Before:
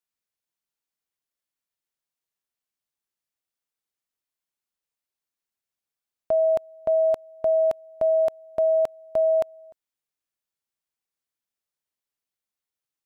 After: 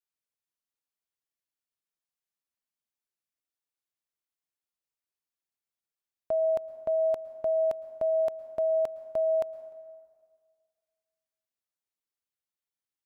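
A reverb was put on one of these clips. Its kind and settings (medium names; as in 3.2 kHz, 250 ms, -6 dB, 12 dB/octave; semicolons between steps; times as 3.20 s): plate-style reverb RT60 1.9 s, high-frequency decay 0.55×, pre-delay 100 ms, DRR 15.5 dB; trim -6 dB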